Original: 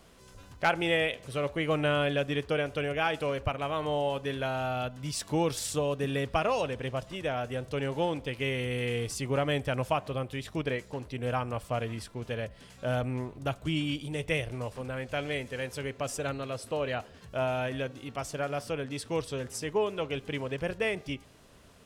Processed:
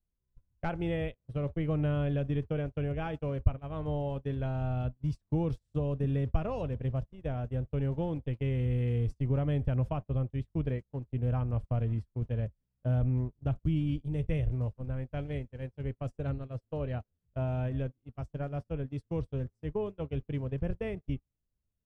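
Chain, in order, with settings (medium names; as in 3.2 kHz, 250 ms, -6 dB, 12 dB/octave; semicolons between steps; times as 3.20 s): tilt EQ -3.5 dB/octave; compression 1.5:1, threshold -31 dBFS, peak gain reduction 6.5 dB; gate -30 dBFS, range -39 dB; bass shelf 200 Hz +10.5 dB; trim -7.5 dB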